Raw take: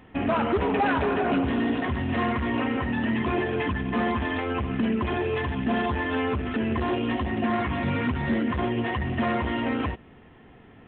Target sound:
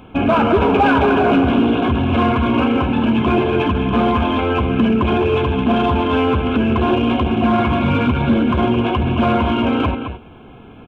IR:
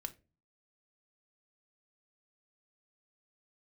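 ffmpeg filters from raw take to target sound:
-filter_complex "[0:a]asuperstop=centerf=1900:order=20:qfactor=4.6,aecho=1:1:216:0.376,asplit=2[a][b];[b]asoftclip=type=hard:threshold=-23.5dB,volume=-8.5dB[c];[a][c]amix=inputs=2:normalize=0,volume=7.5dB"

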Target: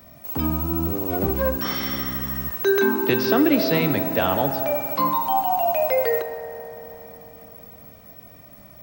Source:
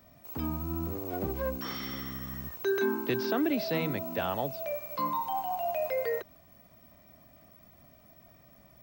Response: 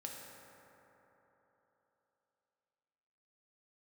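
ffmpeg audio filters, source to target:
-filter_complex "[0:a]asplit=2[a][b];[1:a]atrim=start_sample=2205,highshelf=f=8.7k:g=9[c];[b][c]afir=irnorm=-1:irlink=0,volume=0dB[d];[a][d]amix=inputs=2:normalize=0,volume=6dB"

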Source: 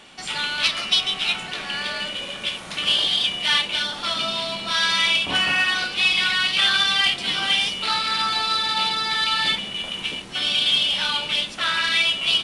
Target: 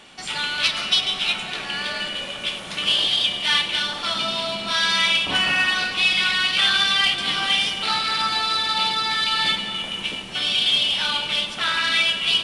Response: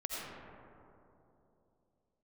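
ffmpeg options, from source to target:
-filter_complex "[0:a]asplit=2[a][b];[1:a]atrim=start_sample=2205,adelay=100[c];[b][c]afir=irnorm=-1:irlink=0,volume=-12dB[d];[a][d]amix=inputs=2:normalize=0"

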